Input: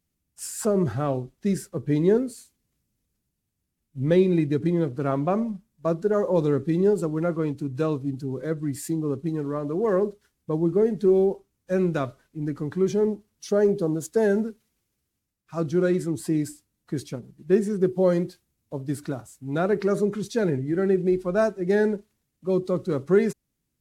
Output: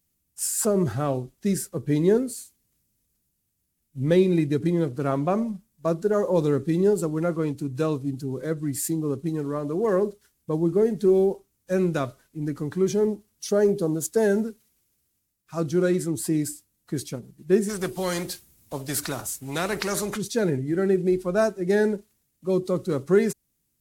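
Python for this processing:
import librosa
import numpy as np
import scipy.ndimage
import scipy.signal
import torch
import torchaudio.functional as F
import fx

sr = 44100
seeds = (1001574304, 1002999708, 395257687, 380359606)

y = fx.high_shelf(x, sr, hz=6000.0, db=11.5)
y = fx.spectral_comp(y, sr, ratio=2.0, at=(17.68, 20.16), fade=0.02)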